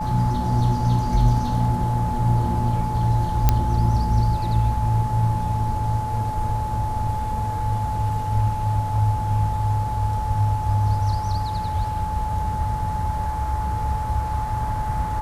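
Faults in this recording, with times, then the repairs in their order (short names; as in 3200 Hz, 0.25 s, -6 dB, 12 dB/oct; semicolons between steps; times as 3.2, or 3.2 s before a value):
tone 860 Hz -26 dBFS
3.49 pop -3 dBFS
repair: de-click; notch 860 Hz, Q 30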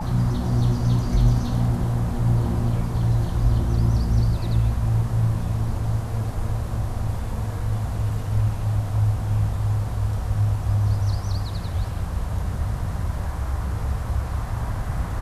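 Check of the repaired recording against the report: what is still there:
none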